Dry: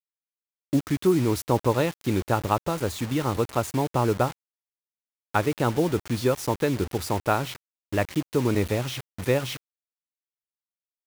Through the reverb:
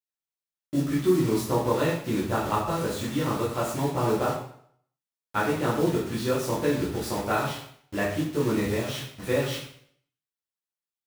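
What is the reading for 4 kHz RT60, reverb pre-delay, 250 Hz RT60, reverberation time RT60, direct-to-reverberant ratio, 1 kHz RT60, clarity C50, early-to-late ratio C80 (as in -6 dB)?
0.55 s, 5 ms, 0.60 s, 0.60 s, -7.5 dB, 0.60 s, 3.5 dB, 7.0 dB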